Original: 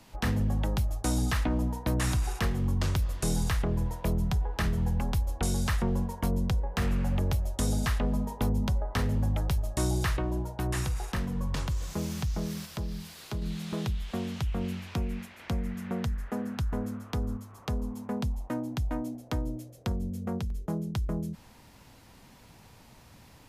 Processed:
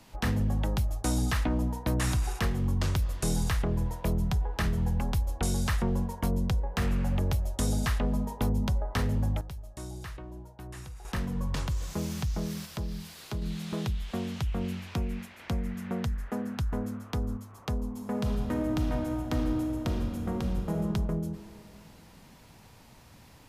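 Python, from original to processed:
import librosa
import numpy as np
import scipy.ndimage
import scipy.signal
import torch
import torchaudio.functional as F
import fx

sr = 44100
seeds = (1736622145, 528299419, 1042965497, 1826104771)

y = fx.reverb_throw(x, sr, start_s=17.91, length_s=2.89, rt60_s=2.7, drr_db=0.5)
y = fx.edit(y, sr, fx.fade_down_up(start_s=9.07, length_s=2.32, db=-12.5, fade_s=0.34, curve='log'), tone=tone)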